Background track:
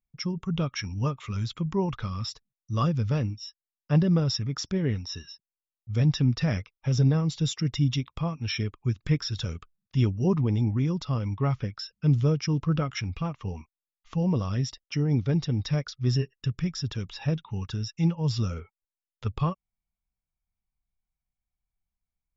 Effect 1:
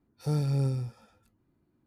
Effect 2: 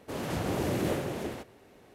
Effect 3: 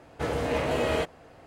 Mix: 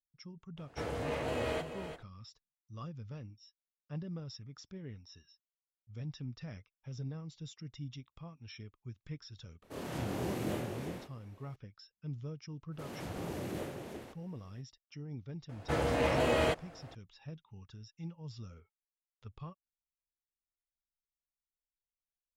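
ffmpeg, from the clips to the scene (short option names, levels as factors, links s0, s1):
-filter_complex "[3:a]asplit=2[s0][s1];[2:a]asplit=2[s2][s3];[0:a]volume=0.106[s4];[s0]aecho=1:1:341:0.335[s5];[s2]asplit=2[s6][s7];[s7]adelay=25,volume=0.794[s8];[s6][s8]amix=inputs=2:normalize=0[s9];[s1]bandreject=f=430:w=12[s10];[s5]atrim=end=1.46,asetpts=PTS-STARTPTS,volume=0.355,afade=t=in:d=0.004:c=hsin,afade=t=out:st=1.456:d=0.004:c=hsin,adelay=570[s11];[s9]atrim=end=1.94,asetpts=PTS-STARTPTS,volume=0.355,afade=t=in:d=0.004:c=hsin,afade=t=out:st=1.936:d=0.004:c=hsin,adelay=424242S[s12];[s3]atrim=end=1.94,asetpts=PTS-STARTPTS,volume=0.316,afade=t=in:d=0.05,afade=t=out:st=1.89:d=0.05,adelay=12700[s13];[s10]atrim=end=1.46,asetpts=PTS-STARTPTS,volume=0.794,afade=t=in:d=0.004:c=hsin,afade=t=out:st=1.456:d=0.004:c=hsin,adelay=15490[s14];[s4][s11][s12][s13][s14]amix=inputs=5:normalize=0"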